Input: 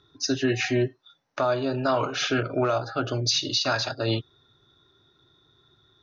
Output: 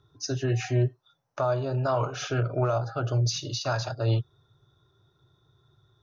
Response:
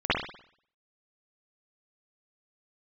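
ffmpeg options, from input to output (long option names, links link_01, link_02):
-af "equalizer=frequency=125:width_type=o:width=1:gain=8,equalizer=frequency=250:width_type=o:width=1:gain=-11,equalizer=frequency=2000:width_type=o:width=1:gain=-9,equalizer=frequency=4000:width_type=o:width=1:gain=-9"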